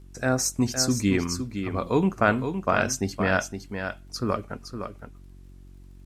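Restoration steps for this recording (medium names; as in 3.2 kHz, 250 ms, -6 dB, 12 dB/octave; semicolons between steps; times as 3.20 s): de-click; de-hum 46.2 Hz, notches 8; inverse comb 513 ms -8 dB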